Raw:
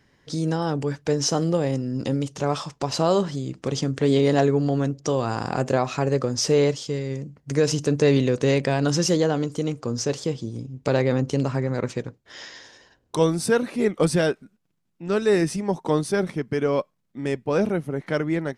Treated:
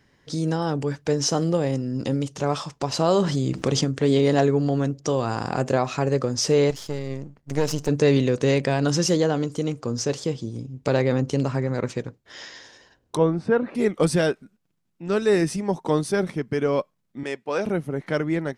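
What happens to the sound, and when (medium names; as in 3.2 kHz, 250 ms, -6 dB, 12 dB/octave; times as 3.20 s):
3.08–3.85 s: level flattener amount 50%
6.70–7.89 s: partial rectifier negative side -12 dB
13.17–13.75 s: low-pass 1.7 kHz
17.23–17.66 s: frequency weighting A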